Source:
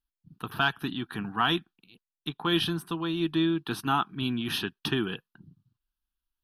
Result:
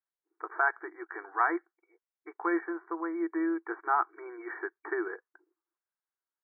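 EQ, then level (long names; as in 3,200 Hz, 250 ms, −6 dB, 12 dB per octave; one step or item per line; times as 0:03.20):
linear-phase brick-wall band-pass 320–2,300 Hz
0.0 dB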